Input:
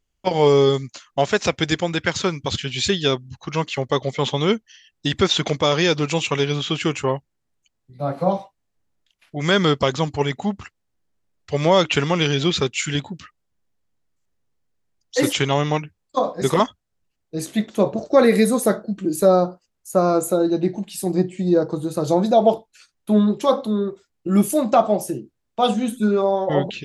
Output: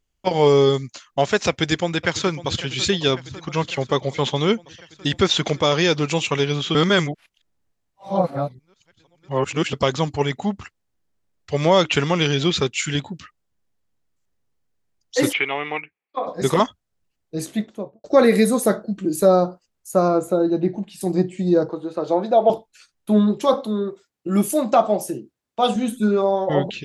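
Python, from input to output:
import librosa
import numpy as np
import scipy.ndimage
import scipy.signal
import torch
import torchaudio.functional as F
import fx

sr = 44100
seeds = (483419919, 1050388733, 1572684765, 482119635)

y = fx.echo_throw(x, sr, start_s=1.48, length_s=1.1, ms=550, feedback_pct=75, wet_db=-16.0)
y = fx.cabinet(y, sr, low_hz=480.0, low_slope=12, high_hz=2700.0, hz=(590.0, 970.0, 1500.0, 2300.0), db=(-9, -5, -5, 10), at=(15.32, 16.26), fade=0.02)
y = fx.studio_fade_out(y, sr, start_s=17.37, length_s=0.67)
y = fx.lowpass(y, sr, hz=2100.0, slope=6, at=(20.08, 21.01))
y = fx.bandpass_edges(y, sr, low_hz=330.0, high_hz=2900.0, at=(21.69, 22.5))
y = fx.highpass(y, sr, hz=180.0, slope=6, at=(23.54, 25.76))
y = fx.edit(y, sr, fx.reverse_span(start_s=6.75, length_s=2.98), tone=tone)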